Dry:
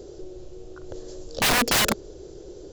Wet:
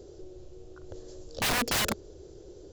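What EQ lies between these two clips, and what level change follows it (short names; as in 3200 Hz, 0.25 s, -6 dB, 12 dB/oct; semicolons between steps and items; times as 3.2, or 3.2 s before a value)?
bell 85 Hz +6 dB 0.82 oct; -7.0 dB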